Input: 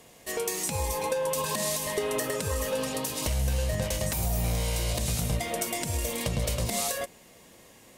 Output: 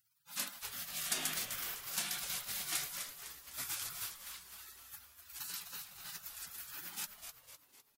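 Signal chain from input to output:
high-pass filter 260 Hz 24 dB per octave
gate on every frequency bin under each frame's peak −30 dB weak
on a send: echo with shifted repeats 253 ms, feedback 48%, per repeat −150 Hz, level −8 dB
on the sum: level +7 dB

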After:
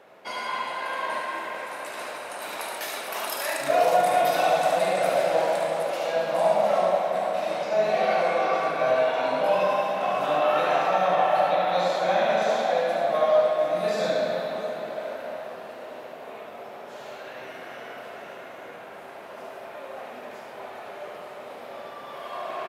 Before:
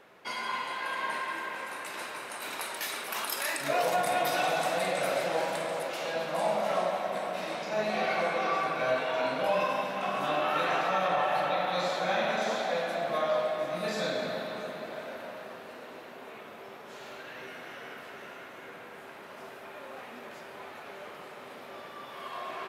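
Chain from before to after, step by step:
high-pass filter 52 Hz
parametric band 640 Hz +8 dB 0.84 octaves
loudspeakers that aren't time-aligned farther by 25 metres −5 dB, 38 metres −10 dB

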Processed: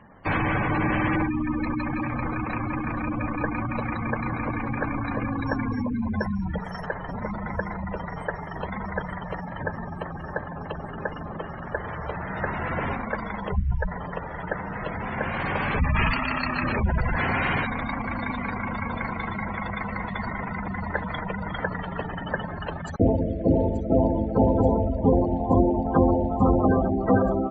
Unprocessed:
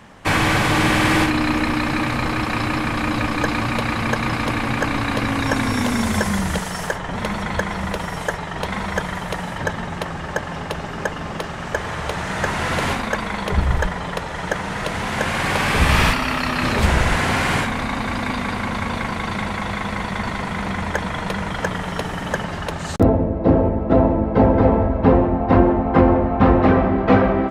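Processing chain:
gate on every frequency bin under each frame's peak −15 dB strong
high-shelf EQ 2,700 Hz −4.5 dB, from 0:15.96 +7 dB
delay with a high-pass on its return 881 ms, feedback 81%, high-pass 5,400 Hz, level −12 dB
level −5.5 dB

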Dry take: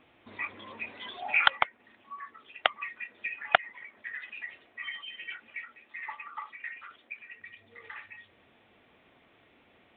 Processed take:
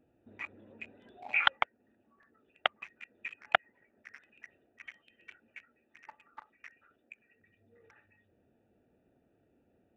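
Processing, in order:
adaptive Wiener filter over 41 samples
level −3.5 dB

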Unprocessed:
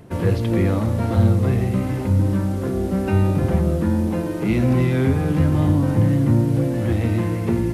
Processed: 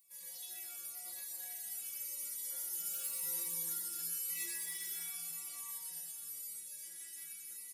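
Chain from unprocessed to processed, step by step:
source passing by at 0:03.47, 20 m/s, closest 26 metres
spectral tilt +4.5 dB per octave
wave folding −20.5 dBFS
first-order pre-emphasis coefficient 0.97
stiff-string resonator 170 Hz, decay 0.8 s, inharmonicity 0.008
on a send: single-tap delay 121 ms −6.5 dB
on the sum: four-comb reverb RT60 2.5 s, combs from 31 ms, DRR 5 dB
phaser whose notches keep moving one way falling 0.91 Hz
level +8.5 dB

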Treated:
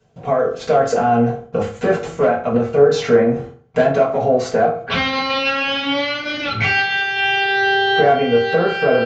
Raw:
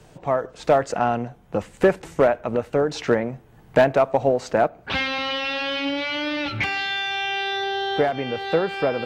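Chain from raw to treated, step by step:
noise gate with hold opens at −37 dBFS
in parallel at −1 dB: output level in coarse steps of 13 dB
on the sum: brickwall limiter −12 dBFS, peak gain reduction 10 dB
reversed playback
upward compression, threshold −23 dBFS
reversed playback
convolution reverb RT60 0.45 s, pre-delay 3 ms, DRR −8.5 dB
downsampling to 16,000 Hz
level −4.5 dB

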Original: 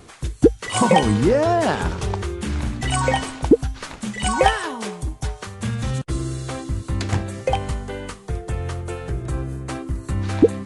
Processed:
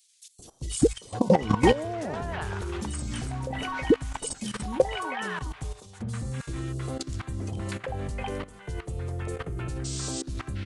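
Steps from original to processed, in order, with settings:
sound drawn into the spectrogram noise, 0:09.84–0:10.22, 1,300–8,800 Hz −30 dBFS
three-band delay without the direct sound highs, lows, mids 390/710 ms, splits 810/3,500 Hz
output level in coarse steps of 16 dB

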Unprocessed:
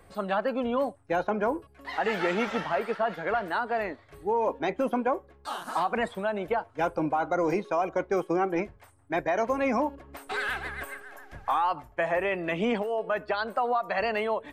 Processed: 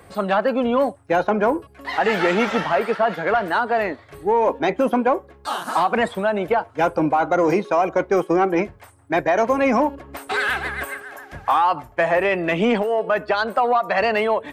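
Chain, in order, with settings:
high-pass filter 62 Hz
in parallel at −5 dB: soft clipping −23.5 dBFS, distortion −14 dB
on the sum: level +5.5 dB

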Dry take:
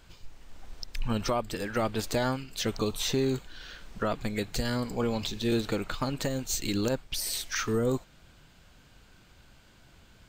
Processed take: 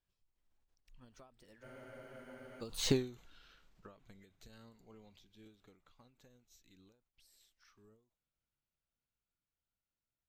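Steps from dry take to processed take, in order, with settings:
source passing by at 0:02.94, 25 m/s, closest 1.3 metres
frozen spectrum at 0:01.66, 0.95 s
every ending faded ahead of time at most 130 dB per second
level +1.5 dB

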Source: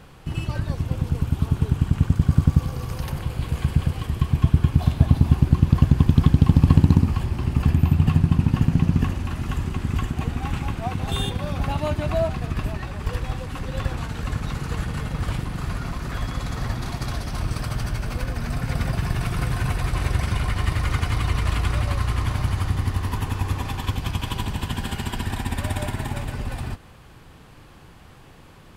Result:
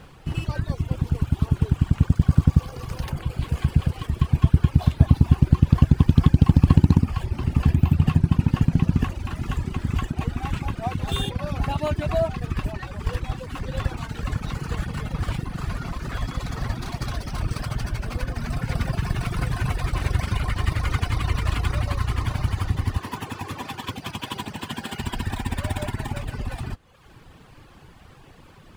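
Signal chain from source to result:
running median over 3 samples
reverb reduction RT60 0.83 s
0:22.98–0:24.99: high-pass filter 180 Hz 12 dB per octave
level +1 dB

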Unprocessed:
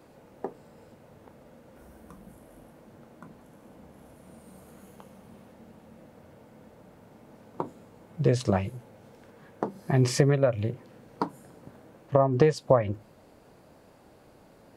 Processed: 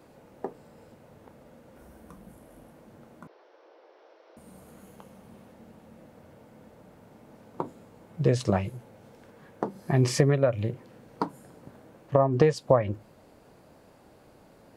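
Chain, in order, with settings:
0:03.27–0:04.37: Chebyshev band-pass filter 350–5,600 Hz, order 5

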